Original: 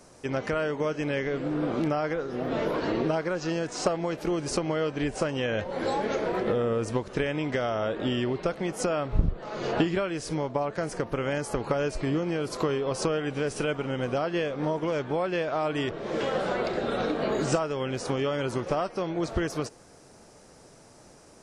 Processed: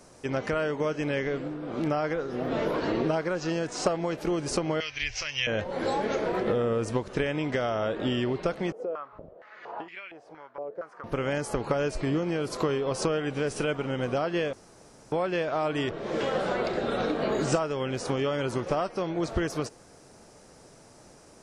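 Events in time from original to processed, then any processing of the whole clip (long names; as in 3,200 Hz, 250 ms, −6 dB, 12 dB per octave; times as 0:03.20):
0:01.31–0:01.91: duck −9 dB, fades 0.27 s
0:04.80–0:05.47: drawn EQ curve 110 Hz 0 dB, 180 Hz −27 dB, 430 Hz −20 dB, 830 Hz −13 dB, 1,500 Hz −4 dB, 2,200 Hz +11 dB, 3,900 Hz +6 dB, 5,900 Hz +11 dB, 9,500 Hz −27 dB
0:08.72–0:11.04: band-pass on a step sequencer 4.3 Hz 470–2,300 Hz
0:14.53–0:15.12: fill with room tone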